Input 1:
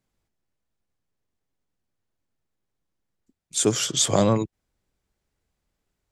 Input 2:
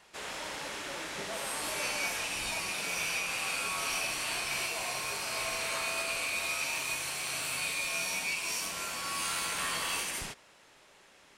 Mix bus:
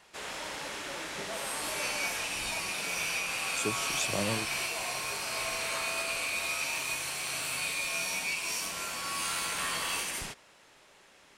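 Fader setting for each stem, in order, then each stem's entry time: -13.5 dB, +0.5 dB; 0.00 s, 0.00 s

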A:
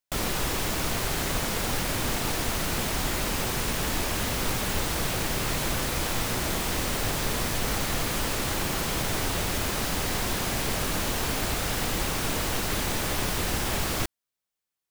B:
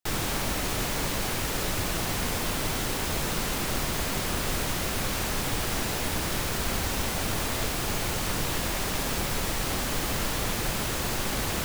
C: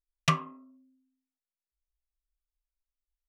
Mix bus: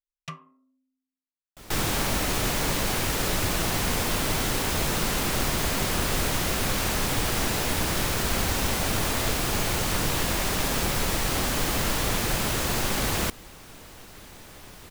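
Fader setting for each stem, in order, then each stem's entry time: -18.0 dB, +3.0 dB, -13.0 dB; 1.45 s, 1.65 s, 0.00 s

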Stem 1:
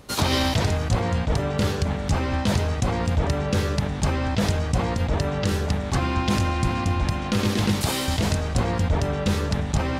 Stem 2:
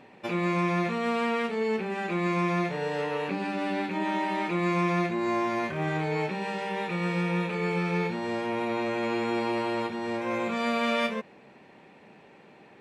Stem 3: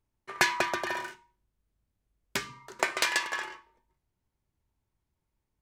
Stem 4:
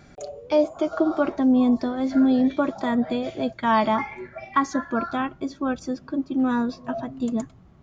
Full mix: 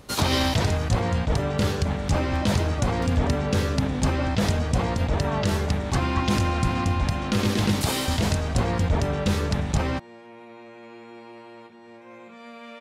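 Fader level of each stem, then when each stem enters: -0.5 dB, -15.5 dB, -18.5 dB, -13.5 dB; 0.00 s, 1.80 s, 0.00 s, 1.60 s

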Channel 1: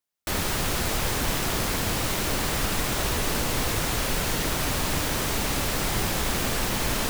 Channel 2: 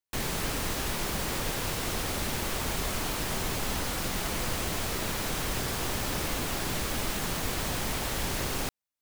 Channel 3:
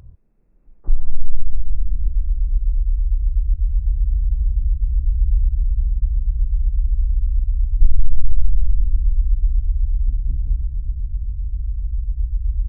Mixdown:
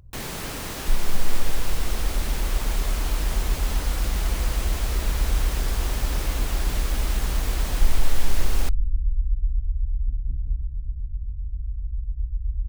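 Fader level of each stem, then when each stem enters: mute, -1.0 dB, -6.0 dB; mute, 0.00 s, 0.00 s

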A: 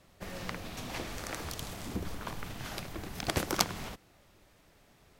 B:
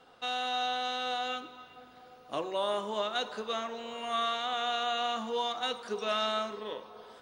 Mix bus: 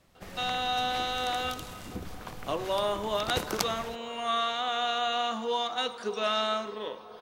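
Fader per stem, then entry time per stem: -2.5 dB, +2.5 dB; 0.00 s, 0.15 s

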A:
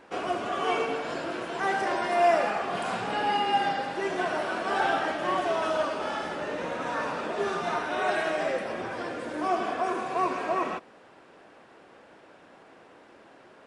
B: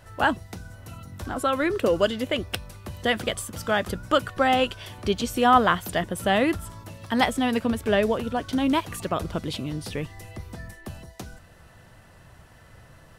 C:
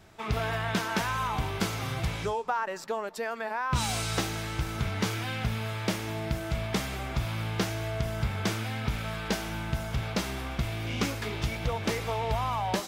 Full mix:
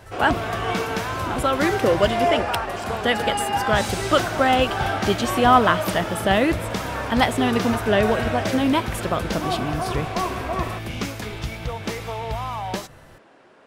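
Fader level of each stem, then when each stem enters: +0.5 dB, +2.5 dB, +1.0 dB; 0.00 s, 0.00 s, 0.00 s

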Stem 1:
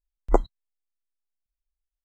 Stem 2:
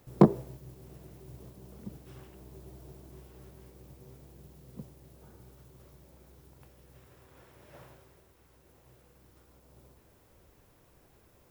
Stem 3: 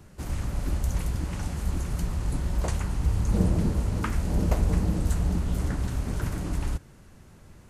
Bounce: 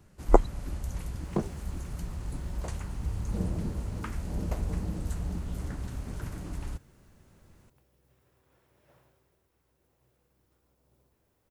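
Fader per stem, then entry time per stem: +1.0 dB, -11.0 dB, -8.0 dB; 0.00 s, 1.15 s, 0.00 s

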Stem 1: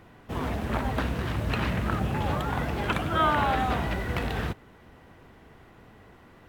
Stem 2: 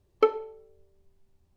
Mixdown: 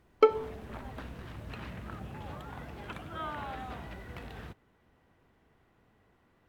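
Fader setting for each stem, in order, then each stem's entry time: -15.0 dB, 0.0 dB; 0.00 s, 0.00 s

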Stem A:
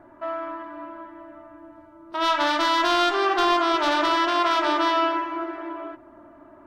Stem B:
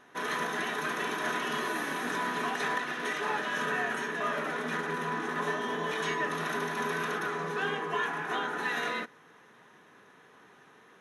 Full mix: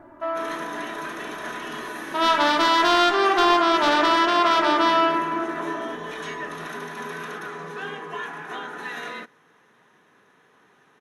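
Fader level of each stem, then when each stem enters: +2.5 dB, -1.5 dB; 0.00 s, 0.20 s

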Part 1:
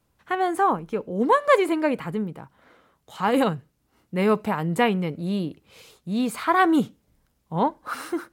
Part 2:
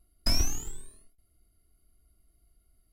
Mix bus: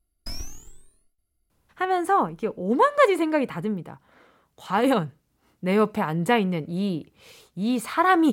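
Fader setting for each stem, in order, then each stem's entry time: 0.0 dB, -8.5 dB; 1.50 s, 0.00 s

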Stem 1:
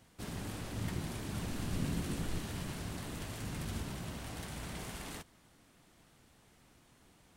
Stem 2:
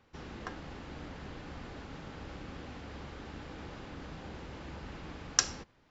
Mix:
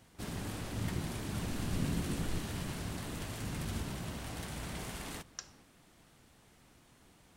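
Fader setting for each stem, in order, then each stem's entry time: +1.5 dB, -18.5 dB; 0.00 s, 0.00 s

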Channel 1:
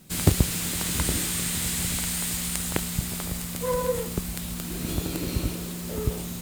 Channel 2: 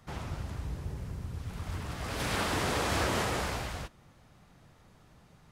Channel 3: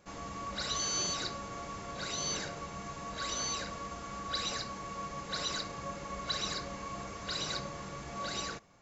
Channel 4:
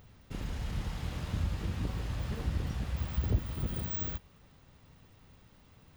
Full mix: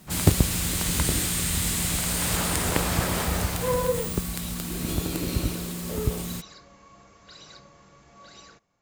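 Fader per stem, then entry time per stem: +1.0 dB, +1.0 dB, -11.0 dB, -2.0 dB; 0.00 s, 0.00 s, 0.00 s, 0.10 s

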